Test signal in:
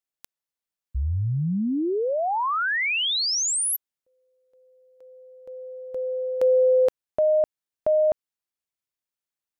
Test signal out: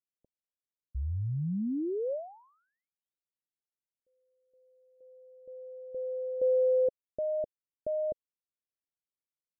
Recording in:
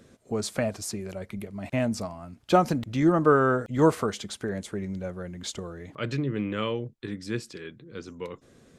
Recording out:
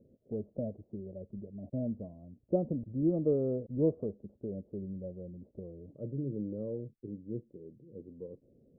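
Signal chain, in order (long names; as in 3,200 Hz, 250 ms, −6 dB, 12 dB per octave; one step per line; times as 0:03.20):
elliptic low-pass filter 570 Hz, stop band 80 dB
level −7 dB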